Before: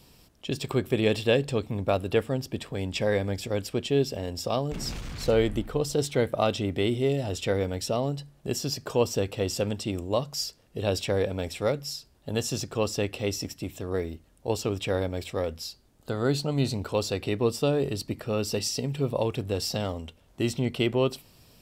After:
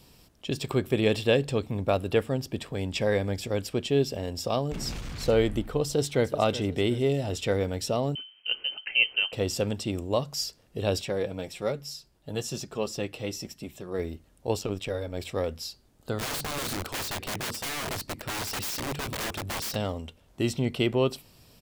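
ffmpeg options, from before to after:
ffmpeg -i in.wav -filter_complex "[0:a]asplit=2[link_01][link_02];[link_02]afade=type=in:start_time=5.87:duration=0.01,afade=type=out:start_time=6.32:duration=0.01,aecho=0:1:370|740|1110|1480|1850:0.188365|0.0941825|0.0470912|0.0235456|0.0117728[link_03];[link_01][link_03]amix=inputs=2:normalize=0,asettb=1/sr,asplit=3[link_04][link_05][link_06];[link_04]atrim=end=8.154[link_07];[link_05]atrim=start=8.15:end=9.33,asetpts=PTS-STARTPTS,afade=type=in:duration=0.004:curve=qsin,afade=type=out:start_time=1.176:duration=0.004:curve=qsin,lowpass=frequency=2700:width_type=q:width=0.5098,lowpass=frequency=2700:width_type=q:width=0.6013,lowpass=frequency=2700:width_type=q:width=0.9,lowpass=frequency=2700:width_type=q:width=2.563,afreqshift=-3200[link_08];[link_06]atrim=start=9.326[link_09];[link_07][link_08]acrossfade=duration=0.004:curve1=hsin:curve2=qsin[link_10];[link_10][link_09]acrossfade=duration=0.004:curve1=qsin:curve2=hsin,asplit=3[link_11][link_12][link_13];[link_11]afade=type=out:start_time=11.01:duration=0.02[link_14];[link_12]flanger=delay=4.6:depth=1.9:regen=-35:speed=1.1:shape=triangular,afade=type=in:start_time=11.01:duration=0.02,afade=type=out:start_time=13.98:duration=0.02[link_15];[link_13]afade=type=in:start_time=13.98:duration=0.02[link_16];[link_14][link_15][link_16]amix=inputs=3:normalize=0,asettb=1/sr,asplit=3[link_17][link_18][link_19];[link_17]atrim=end=14.594[link_20];[link_18]atrim=start=14.59:end=15.2,asetpts=PTS-STARTPTS,afade=type=in:duration=0.004:curve=qsin,afade=type=out:start_time=0.606:duration=0.004:curve=qsin,tremolo=f=94:d=0.71[link_21];[link_19]atrim=start=15.196[link_22];[link_20][link_21]acrossfade=duration=0.004:curve1=hsin:curve2=qsin[link_23];[link_23][link_22]acrossfade=duration=0.004:curve1=qsin:curve2=hsin,asplit=3[link_24][link_25][link_26];[link_24]afade=type=out:start_time=16.18:duration=0.02[link_27];[link_25]aeval=exprs='(mod(23.7*val(0)+1,2)-1)/23.7':channel_layout=same,afade=type=in:start_time=16.18:duration=0.02,afade=type=out:start_time=19.74:duration=0.02[link_28];[link_26]afade=type=in:start_time=19.74:duration=0.02[link_29];[link_27][link_28][link_29]amix=inputs=3:normalize=0" out.wav

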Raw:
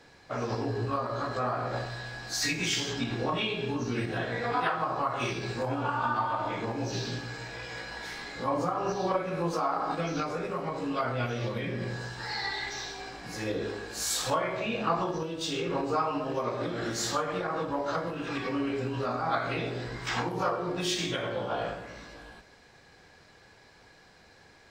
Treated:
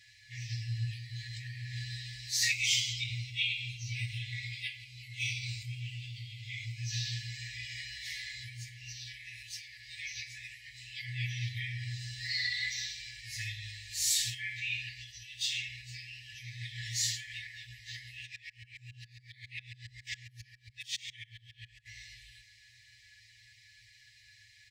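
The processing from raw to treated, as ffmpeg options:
ffmpeg -i in.wav -filter_complex "[0:a]asettb=1/sr,asplit=3[link_01][link_02][link_03];[link_01]atrim=end=2.514[link_04];[link_02]atrim=start=2.51:end=6.79,asetpts=PTS-STARTPTS,afade=type=in:duration=0.004:curve=qsin,afade=type=out:start_time=4.276:duration=0.004:curve=qsin,asuperstop=centerf=1800:order=8:qfactor=5.9[link_05];[link_03]atrim=start=6.786[link_06];[link_04][link_05]acrossfade=duration=0.004:curve1=hsin:curve2=qsin[link_07];[link_07][link_06]acrossfade=duration=0.004:curve1=qsin:curve2=hsin,asplit=3[link_08][link_09][link_10];[link_08]afade=type=out:start_time=18.25:duration=0.02[link_11];[link_09]aeval=exprs='val(0)*pow(10,-33*if(lt(mod(-7.3*n/s,1),2*abs(-7.3)/1000),1-mod(-7.3*n/s,1)/(2*abs(-7.3)/1000),(mod(-7.3*n/s,1)-2*abs(-7.3)/1000)/(1-2*abs(-7.3)/1000))/20)':channel_layout=same,afade=type=in:start_time=18.25:duration=0.02,afade=type=out:start_time=21.85:duration=0.02[link_12];[link_10]afade=type=in:start_time=21.85:duration=0.02[link_13];[link_11][link_12][link_13]amix=inputs=3:normalize=0,afftfilt=real='re*(1-between(b*sr/4096,120,1700))':imag='im*(1-between(b*sr/4096,120,1700))':win_size=4096:overlap=0.75,highpass=66,aecho=1:1:6.5:0.65" out.wav

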